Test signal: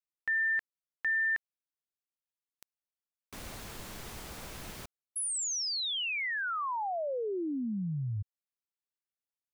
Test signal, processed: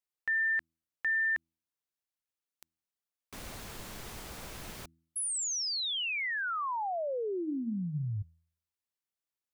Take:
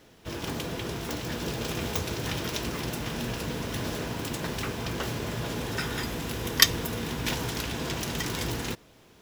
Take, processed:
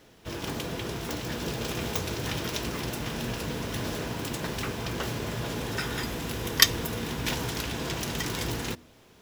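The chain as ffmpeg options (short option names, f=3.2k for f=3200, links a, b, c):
-af "bandreject=f=81.59:t=h:w=4,bandreject=f=163.18:t=h:w=4,bandreject=f=244.77:t=h:w=4,bandreject=f=326.36:t=h:w=4"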